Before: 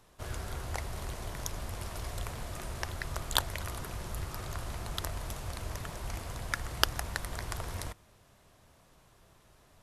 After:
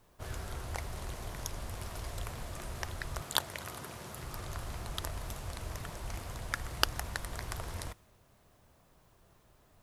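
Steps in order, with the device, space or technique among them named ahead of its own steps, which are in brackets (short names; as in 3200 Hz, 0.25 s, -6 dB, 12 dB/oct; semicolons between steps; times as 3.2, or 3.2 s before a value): plain cassette with noise reduction switched in (mismatched tape noise reduction decoder only; wow and flutter; white noise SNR 35 dB); 3.21–4.24 HPF 130 Hz 12 dB/oct; gain -2 dB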